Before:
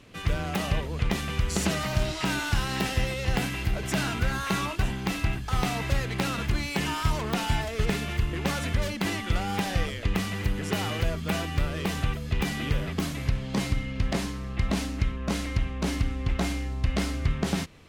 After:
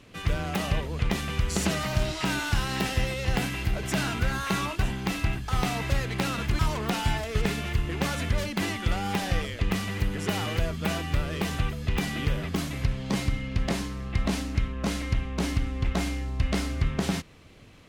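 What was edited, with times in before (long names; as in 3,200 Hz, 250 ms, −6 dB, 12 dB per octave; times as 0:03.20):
0:06.59–0:07.03: remove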